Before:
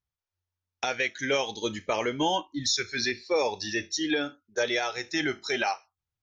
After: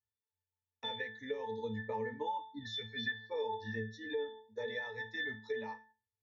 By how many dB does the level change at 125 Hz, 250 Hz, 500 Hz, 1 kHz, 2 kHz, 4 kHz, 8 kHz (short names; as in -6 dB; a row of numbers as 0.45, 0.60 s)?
-5.0 dB, -13.5 dB, -10.0 dB, -10.0 dB, -10.0 dB, -13.5 dB, n/a